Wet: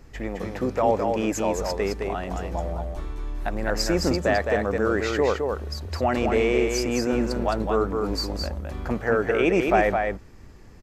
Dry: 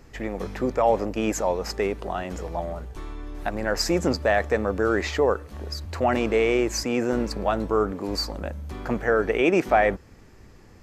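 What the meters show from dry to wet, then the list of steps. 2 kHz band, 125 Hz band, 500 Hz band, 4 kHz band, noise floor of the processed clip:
0.0 dB, +2.5 dB, 0.0 dB, 0.0 dB, -45 dBFS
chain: low shelf 110 Hz +5.5 dB; echo 0.213 s -4.5 dB; gain -1.5 dB

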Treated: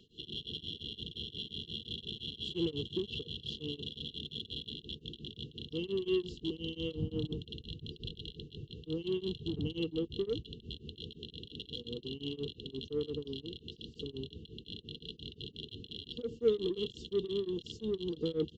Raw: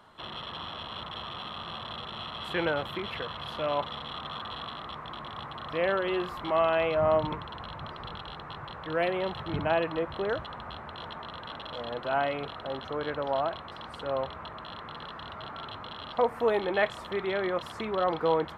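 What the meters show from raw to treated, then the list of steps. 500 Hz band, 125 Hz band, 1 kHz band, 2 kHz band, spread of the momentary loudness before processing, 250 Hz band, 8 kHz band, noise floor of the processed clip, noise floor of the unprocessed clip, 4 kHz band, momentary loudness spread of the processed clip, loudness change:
-8.0 dB, -1.5 dB, -33.5 dB, -19.0 dB, 14 LU, -1.0 dB, n/a, -60 dBFS, -43 dBFS, -1.0 dB, 11 LU, -7.0 dB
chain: downsampling 16000 Hz; brick-wall FIR band-stop 480–2700 Hz; in parallel at -9 dB: soft clip -34.5 dBFS, distortion -9 dB; on the sum: bell 1800 Hz +2.5 dB; beating tremolo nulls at 5.7 Hz

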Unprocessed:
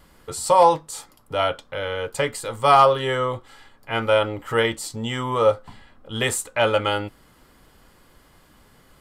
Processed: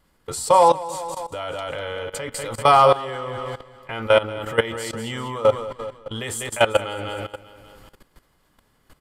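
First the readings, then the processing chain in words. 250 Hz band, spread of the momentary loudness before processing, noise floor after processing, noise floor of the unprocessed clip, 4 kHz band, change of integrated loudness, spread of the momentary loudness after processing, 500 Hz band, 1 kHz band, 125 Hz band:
-2.0 dB, 15 LU, -64 dBFS, -55 dBFS, -1.5 dB, -0.5 dB, 17 LU, +0.5 dB, +0.5 dB, -2.0 dB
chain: feedback echo 0.196 s, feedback 48%, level -8.5 dB; level quantiser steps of 17 dB; gain +4.5 dB

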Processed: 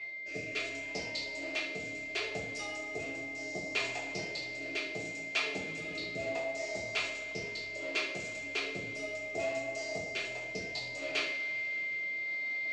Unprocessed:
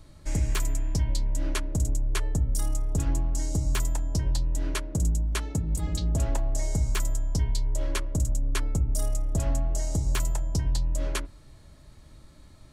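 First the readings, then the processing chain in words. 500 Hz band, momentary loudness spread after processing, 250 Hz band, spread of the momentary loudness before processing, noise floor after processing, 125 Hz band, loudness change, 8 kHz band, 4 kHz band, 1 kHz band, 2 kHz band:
+1.5 dB, 5 LU, -10.0 dB, 2 LU, -42 dBFS, -24.5 dB, -6.5 dB, -12.5 dB, +1.5 dB, -3.5 dB, +9.5 dB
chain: rotary speaker horn 0.7 Hz; flange 1.3 Hz, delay 0.8 ms, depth 6.2 ms, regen -39%; whine 2100 Hz -52 dBFS; reverse; upward compressor, threshold -37 dBFS; reverse; speaker cabinet 470–5000 Hz, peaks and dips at 480 Hz +3 dB, 690 Hz +7 dB, 990 Hz -9 dB, 1500 Hz -6 dB, 2500 Hz +9 dB, 4600 Hz +4 dB; two-slope reverb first 0.56 s, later 4.4 s, from -18 dB, DRR -5 dB

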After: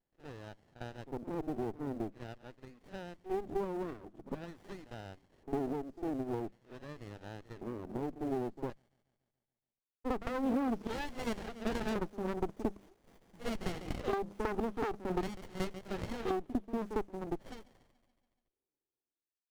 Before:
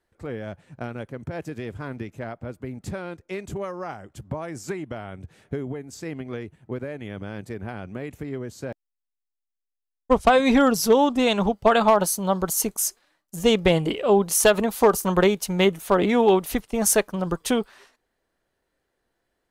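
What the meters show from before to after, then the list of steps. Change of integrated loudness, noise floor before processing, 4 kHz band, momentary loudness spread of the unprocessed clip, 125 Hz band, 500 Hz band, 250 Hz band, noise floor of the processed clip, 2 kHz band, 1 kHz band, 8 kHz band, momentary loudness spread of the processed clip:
-17.5 dB, -83 dBFS, -20.5 dB, 17 LU, -13.5 dB, -16.5 dB, -13.0 dB, under -85 dBFS, -17.0 dB, -16.0 dB, -30.5 dB, 14 LU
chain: ending faded out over 4.55 s; on a send: thin delay 0.142 s, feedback 62%, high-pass 3900 Hz, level -9 dB; on the sum: LFO band-pass square 0.46 Hz 380–2200 Hz; HPF 150 Hz 6 dB/oct; notches 50/100/150/200 Hz; small resonant body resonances 250/840/3200 Hz, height 7 dB, ringing for 20 ms; pre-echo 53 ms -13.5 dB; in parallel at -8 dB: short-mantissa float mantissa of 2-bit; on the sum: one-sided clip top -16 dBFS; compressor 10:1, threshold -23 dBFS, peak gain reduction 11 dB; running maximum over 33 samples; gain -3.5 dB

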